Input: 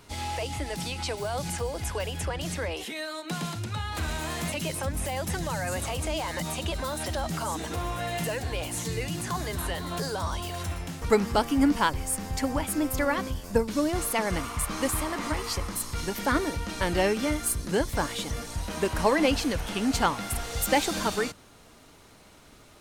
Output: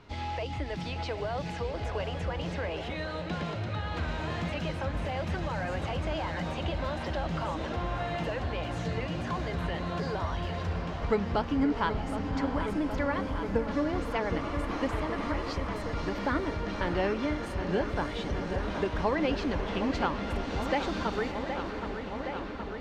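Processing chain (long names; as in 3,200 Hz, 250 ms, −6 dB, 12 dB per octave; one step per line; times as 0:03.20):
on a send: delay with a low-pass on its return 769 ms, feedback 79%, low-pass 3,300 Hz, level −11 dB
on the sum: downward compressor 1.5 to 1, threshold −31 dBFS, peak gain reduction 5.5 dB
high-frequency loss of the air 210 metres
feedback delay with all-pass diffusion 603 ms, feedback 53%, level −9.5 dB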